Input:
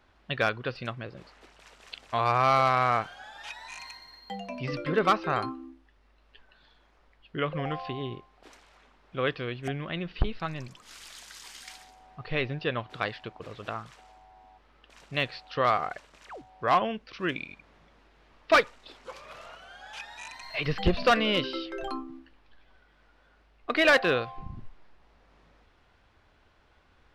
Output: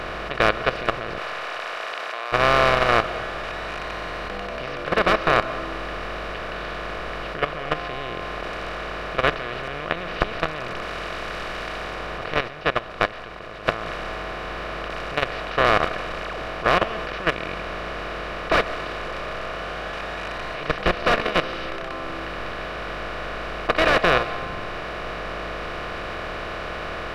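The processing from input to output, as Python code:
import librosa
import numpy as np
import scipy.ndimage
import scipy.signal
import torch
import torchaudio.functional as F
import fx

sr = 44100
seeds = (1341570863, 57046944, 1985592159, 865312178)

y = fx.bin_compress(x, sr, power=0.2)
y = fx.highpass(y, sr, hz=610.0, slope=12, at=(1.18, 2.32))
y = fx.level_steps(y, sr, step_db=14)
y = fx.rev_freeverb(y, sr, rt60_s=1.6, hf_ratio=1.0, predelay_ms=95, drr_db=14.0)
y = fx.upward_expand(y, sr, threshold_db=-26.0, expansion=1.5, at=(12.47, 13.65), fade=0.02)
y = F.gain(torch.from_numpy(y), -3.0).numpy()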